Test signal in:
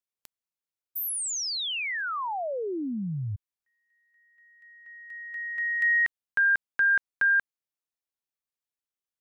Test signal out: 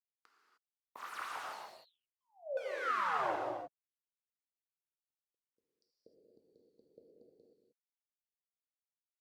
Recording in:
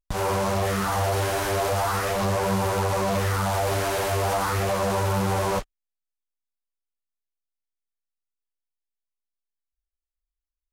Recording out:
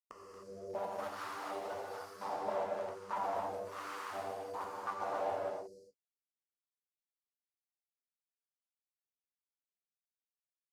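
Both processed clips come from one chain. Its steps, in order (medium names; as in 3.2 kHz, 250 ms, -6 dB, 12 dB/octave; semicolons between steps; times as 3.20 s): rattle on loud lows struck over -36 dBFS, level -29 dBFS; high-pass 110 Hz 6 dB/octave; spectral noise reduction 15 dB; Chebyshev band-stop 480–4700 Hz, order 5; integer overflow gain 34.5 dB; wah-wah 1.1 Hz 610–1300 Hz, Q 4.6; gated-style reverb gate 330 ms flat, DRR -3.5 dB; trim +10.5 dB; Opus 64 kbps 48 kHz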